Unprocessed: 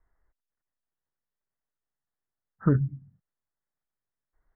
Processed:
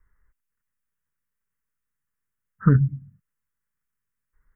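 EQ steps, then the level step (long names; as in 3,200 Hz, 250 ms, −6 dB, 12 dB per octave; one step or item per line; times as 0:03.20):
parametric band 330 Hz −11 dB 0.3 octaves
phaser with its sweep stopped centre 1,700 Hz, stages 4
+7.5 dB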